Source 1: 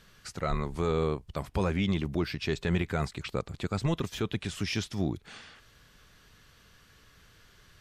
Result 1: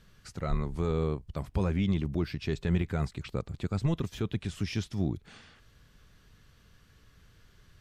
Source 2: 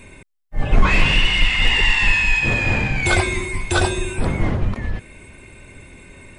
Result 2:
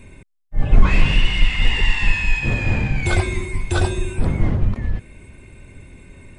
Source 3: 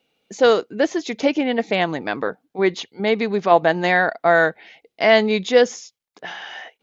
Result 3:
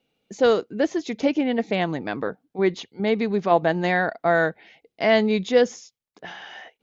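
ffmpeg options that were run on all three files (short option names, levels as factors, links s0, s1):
-af "lowshelf=f=310:g=9,volume=0.501"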